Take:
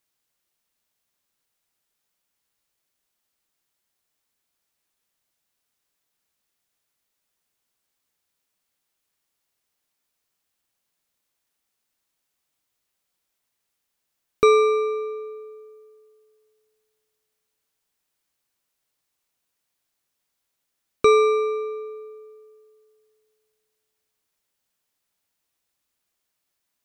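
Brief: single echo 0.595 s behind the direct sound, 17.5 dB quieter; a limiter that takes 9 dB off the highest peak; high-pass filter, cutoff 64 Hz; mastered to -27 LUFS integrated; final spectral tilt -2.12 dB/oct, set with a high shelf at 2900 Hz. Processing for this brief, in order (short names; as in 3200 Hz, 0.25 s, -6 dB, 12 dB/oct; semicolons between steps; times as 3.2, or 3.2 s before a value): HPF 64 Hz; high shelf 2900 Hz +3.5 dB; limiter -13.5 dBFS; echo 0.595 s -17.5 dB; gain -2.5 dB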